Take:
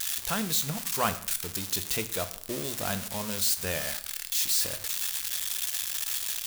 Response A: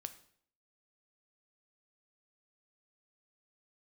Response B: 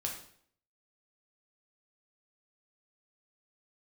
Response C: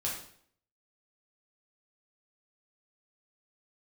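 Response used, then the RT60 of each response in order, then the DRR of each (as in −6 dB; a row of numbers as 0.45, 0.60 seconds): A; 0.60, 0.60, 0.60 seconds; 9.5, −0.5, −4.5 decibels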